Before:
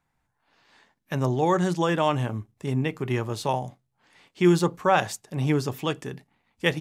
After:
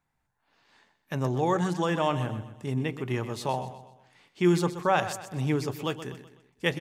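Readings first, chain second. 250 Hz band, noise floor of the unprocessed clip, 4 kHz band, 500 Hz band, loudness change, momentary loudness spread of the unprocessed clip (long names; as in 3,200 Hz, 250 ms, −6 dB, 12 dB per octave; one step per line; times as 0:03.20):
−3.5 dB, −76 dBFS, −3.0 dB, −3.5 dB, −3.5 dB, 12 LU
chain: repeating echo 126 ms, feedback 43%, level −12 dB
level −3.5 dB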